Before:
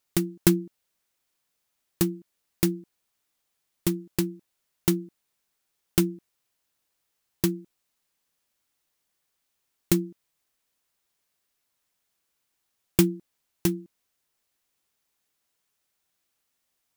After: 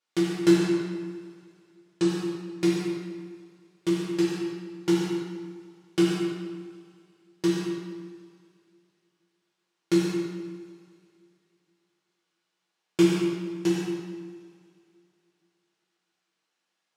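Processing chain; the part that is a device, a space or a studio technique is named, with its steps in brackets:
supermarket ceiling speaker (band-pass filter 250–5,100 Hz; convolution reverb RT60 1.6 s, pre-delay 71 ms, DRR 1.5 dB)
0:00.55–0:02.06: Butterworth low-pass 9,800 Hz
coupled-rooms reverb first 0.66 s, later 3.1 s, from −22 dB, DRR −6.5 dB
level −6 dB

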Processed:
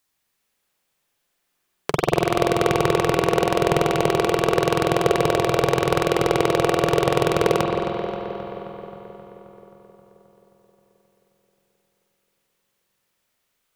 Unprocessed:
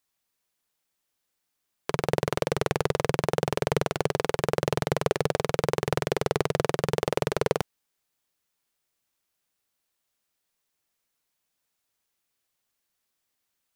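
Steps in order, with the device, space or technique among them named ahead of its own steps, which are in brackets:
dub delay into a spring reverb (feedback echo with a low-pass in the loop 265 ms, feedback 70%, low-pass 3,500 Hz, level −9 dB; spring reverb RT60 3.1 s, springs 45 ms, chirp 80 ms, DRR −1 dB)
level +5 dB

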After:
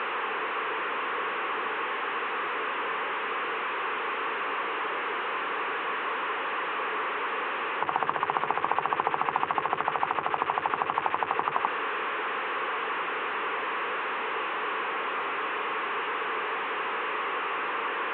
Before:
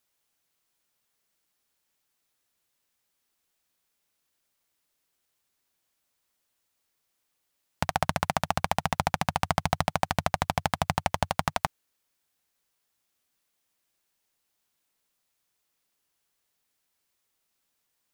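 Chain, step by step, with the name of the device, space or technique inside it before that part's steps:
digital answering machine (band-pass filter 330–3,300 Hz; linear delta modulator 16 kbit/s, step −26.5 dBFS; loudspeaker in its box 380–3,200 Hz, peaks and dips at 440 Hz +8 dB, 650 Hz −10 dB, 1,100 Hz +7 dB, 2,200 Hz −4 dB, 3,200 Hz −4 dB)
level +3 dB

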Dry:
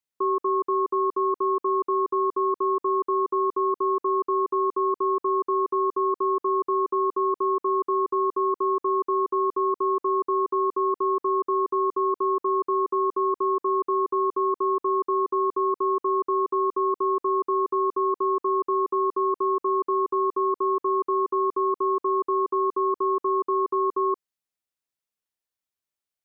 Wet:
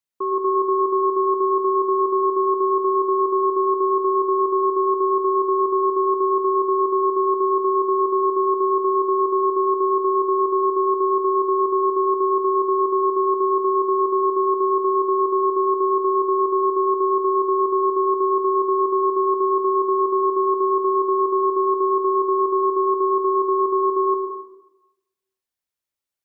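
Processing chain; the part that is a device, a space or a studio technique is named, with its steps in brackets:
bathroom (convolution reverb RT60 0.95 s, pre-delay 105 ms, DRR 2.5 dB)

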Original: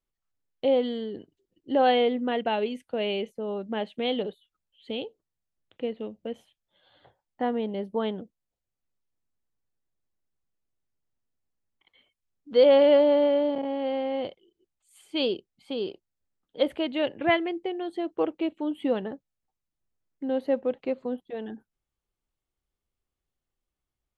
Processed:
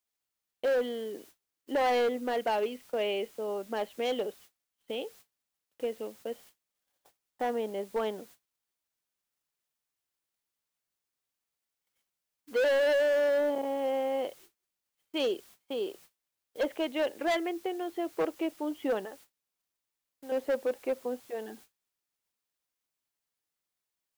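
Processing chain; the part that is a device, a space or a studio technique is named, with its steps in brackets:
0:19.05–0:20.32: high-pass filter 840 Hz 6 dB per octave
aircraft radio (band-pass filter 370–2,700 Hz; hard clipping −24 dBFS, distortion −7 dB; white noise bed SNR 24 dB; noise gate −53 dBFS, range −30 dB)

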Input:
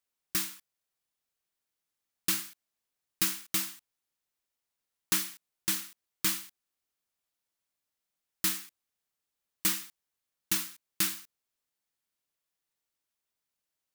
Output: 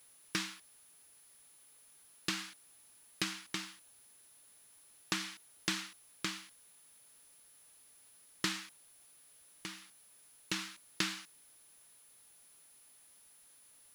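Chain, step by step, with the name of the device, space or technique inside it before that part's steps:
medium wave at night (band-pass filter 130–4,500 Hz; downward compressor, threshold −36 dBFS, peak gain reduction 8 dB; amplitude tremolo 0.36 Hz, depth 72%; steady tone 10,000 Hz −67 dBFS; white noise bed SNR 21 dB)
level +6 dB

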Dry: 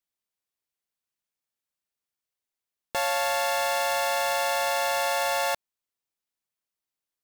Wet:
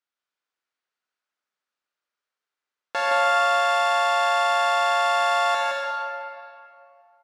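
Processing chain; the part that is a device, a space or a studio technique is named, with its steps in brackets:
station announcement (band-pass filter 310–4,900 Hz; parametric band 1,400 Hz +8 dB 0.54 octaves; loudspeakers that aren't time-aligned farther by 57 metres −3 dB, 100 metres −12 dB; convolution reverb RT60 2.5 s, pre-delay 41 ms, DRR 0 dB)

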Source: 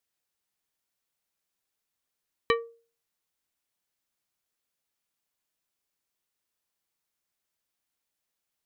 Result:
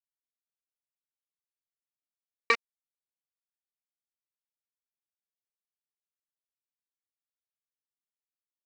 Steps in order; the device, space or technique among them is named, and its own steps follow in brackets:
hand-held game console (bit reduction 4 bits; loudspeaker in its box 400–5,400 Hz, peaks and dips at 610 Hz −7 dB, 2,300 Hz +9 dB, 3,300 Hz −7 dB)

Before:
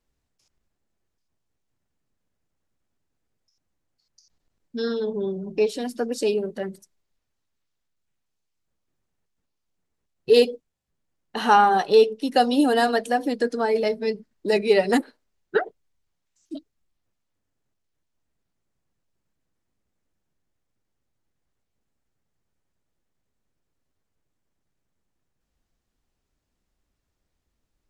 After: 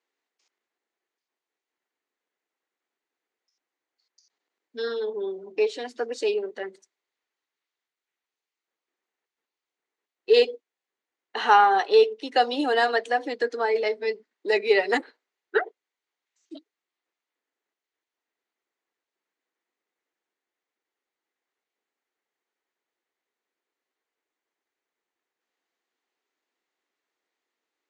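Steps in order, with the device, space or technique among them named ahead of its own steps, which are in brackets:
phone speaker on a table (loudspeaker in its box 360–6,500 Hz, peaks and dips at 590 Hz −6 dB, 2,000 Hz +5 dB, 5,300 Hz −6 dB)

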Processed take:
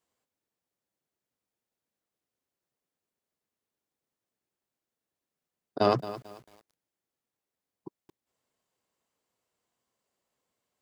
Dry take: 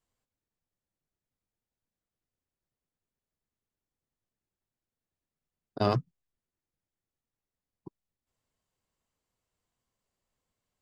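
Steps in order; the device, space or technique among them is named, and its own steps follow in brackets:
filter by subtraction (in parallel: low-pass filter 410 Hz 12 dB per octave + polarity inversion)
on the sum: feedback echo at a low word length 221 ms, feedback 35%, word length 8 bits, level −14 dB
level +2.5 dB

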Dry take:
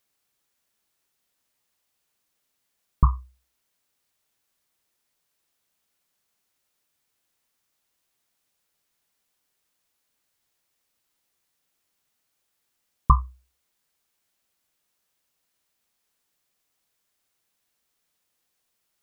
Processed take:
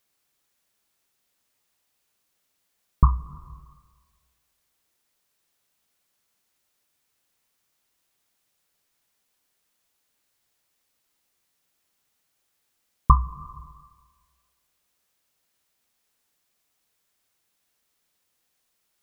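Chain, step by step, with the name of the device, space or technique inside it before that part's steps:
compressed reverb return (on a send at −9 dB: convolution reverb RT60 1.5 s, pre-delay 50 ms + downward compressor 4 to 1, threshold −26 dBFS, peak gain reduction 11.5 dB)
on the sum: level +1.5 dB

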